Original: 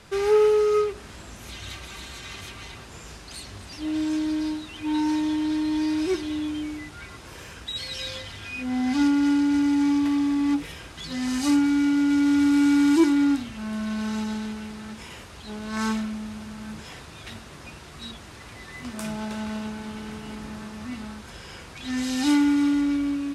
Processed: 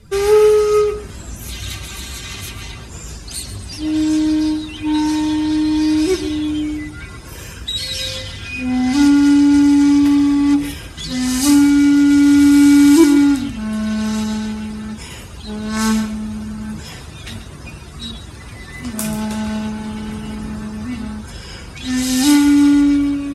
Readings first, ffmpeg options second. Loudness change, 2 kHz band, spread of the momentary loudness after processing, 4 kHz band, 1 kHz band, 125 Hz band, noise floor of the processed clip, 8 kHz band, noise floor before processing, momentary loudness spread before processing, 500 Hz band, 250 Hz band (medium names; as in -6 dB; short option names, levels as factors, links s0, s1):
+9.0 dB, +7.0 dB, 21 LU, +9.5 dB, +6.5 dB, +11.5 dB, -34 dBFS, +13.5 dB, -44 dBFS, 21 LU, +7.5 dB, +9.5 dB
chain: -filter_complex "[0:a]aemphasis=mode=production:type=50fm,afftdn=nr=17:nf=-45,lowshelf=f=220:g=8,asplit=2[s0][s1];[s1]aecho=0:1:136:0.237[s2];[s0][s2]amix=inputs=2:normalize=0,volume=2"